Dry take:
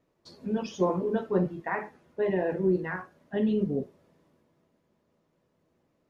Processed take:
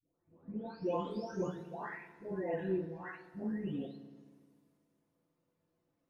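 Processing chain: delay that grows with frequency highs late, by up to 845 ms; hum notches 60/120/180 Hz; FDN reverb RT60 1.7 s, low-frequency decay 1.05×, high-frequency decay 0.75×, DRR 10 dB; trim -7.5 dB

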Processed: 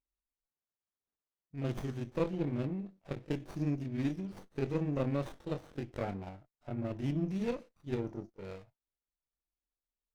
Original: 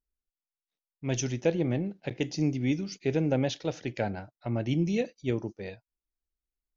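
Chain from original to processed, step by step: granular stretch 1.5×, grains 127 ms; sliding maximum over 17 samples; trim -5.5 dB

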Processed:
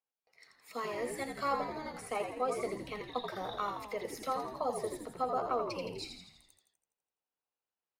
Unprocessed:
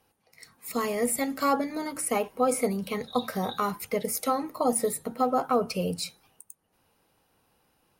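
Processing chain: three-band isolator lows -13 dB, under 390 Hz, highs -16 dB, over 5.9 kHz; gate with hold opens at -56 dBFS; frequency-shifting echo 83 ms, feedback 58%, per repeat -68 Hz, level -6 dB; trim -7.5 dB

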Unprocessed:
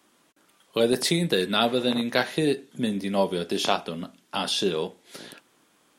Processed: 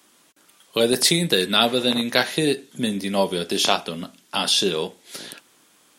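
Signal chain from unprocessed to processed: treble shelf 2.6 kHz +8 dB; trim +2 dB

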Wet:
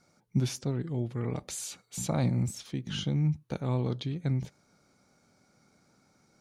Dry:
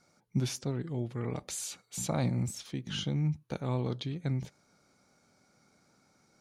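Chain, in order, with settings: bass shelf 350 Hz +3.5 dB

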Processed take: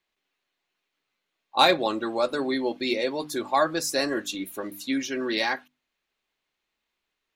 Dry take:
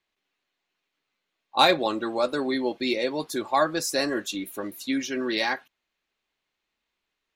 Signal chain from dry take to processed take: hum notches 50/100/150/200/250/300 Hz

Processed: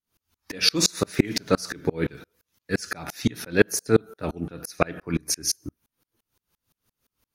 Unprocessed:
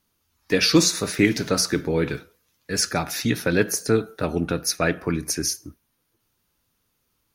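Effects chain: sawtooth tremolo in dB swelling 5.8 Hz, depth 33 dB; trim +6 dB

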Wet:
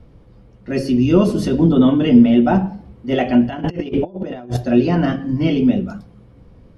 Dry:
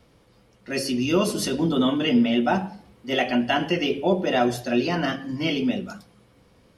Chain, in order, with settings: tilt EQ -3.5 dB/octave; 3.49–4.57 s: compressor with a negative ratio -25 dBFS, ratio -0.5; trim +2.5 dB

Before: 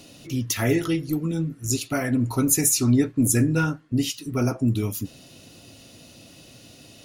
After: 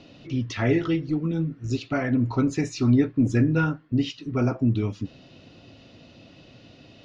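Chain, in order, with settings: Bessel low-pass 3.1 kHz, order 6

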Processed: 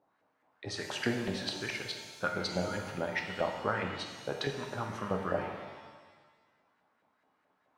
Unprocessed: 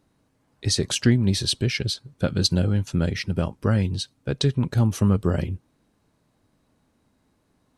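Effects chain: LFO band-pass saw up 4.7 Hz 640–2000 Hz; pitch-shifted reverb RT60 1.4 s, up +7 st, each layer -8 dB, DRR 3 dB; trim +3 dB

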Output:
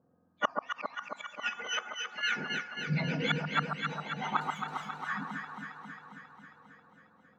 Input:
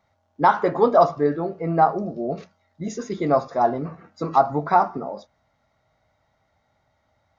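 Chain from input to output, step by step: spectrum inverted on a logarithmic axis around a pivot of 1 kHz; level-controlled noise filter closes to 560 Hz, open at -18.5 dBFS; de-hum 431.9 Hz, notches 15; dynamic bell 1.5 kHz, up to +4 dB, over -29 dBFS, Q 2.5; transient shaper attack -6 dB, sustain +2 dB; 4.41–4.95 s: waveshaping leveller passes 3; inverted gate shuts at -21 dBFS, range -36 dB; 1.49–2.23 s: feedback comb 190 Hz, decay 1.5 s, mix 50%; echo whose repeats swap between lows and highs 135 ms, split 1.2 kHz, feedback 82%, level -2.5 dB; trim +5 dB

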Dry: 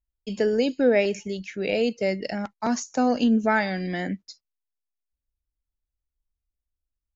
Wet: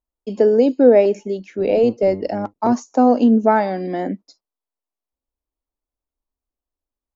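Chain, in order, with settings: 1.58–2.73 s: octave divider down 1 oct, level -4 dB; high-order bell 510 Hz +14.5 dB 2.8 oct; trim -5.5 dB

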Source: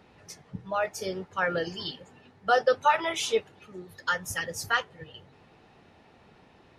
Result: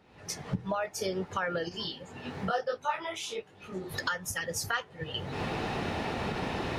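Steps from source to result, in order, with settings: recorder AGC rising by 49 dB/s; 1.69–3.94 s: detune thickener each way 36 cents; trim -6 dB

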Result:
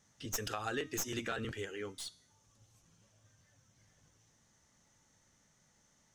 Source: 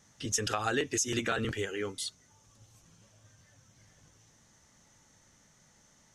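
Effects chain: tracing distortion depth 0.048 ms; de-hum 313 Hz, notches 38; trim -7 dB

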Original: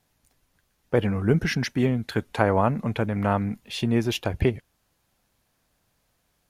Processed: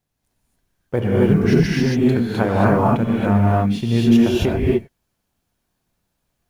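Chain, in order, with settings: companding laws mixed up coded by A; bass shelf 450 Hz +6.5 dB; gated-style reverb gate 300 ms rising, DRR -5.5 dB; trim -3 dB

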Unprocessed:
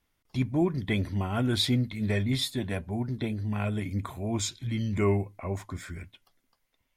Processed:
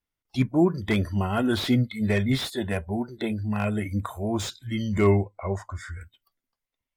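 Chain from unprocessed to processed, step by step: spectral noise reduction 18 dB; 5.11–6.01 s: distance through air 64 m; slew-rate limiter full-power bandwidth 70 Hz; trim +5.5 dB

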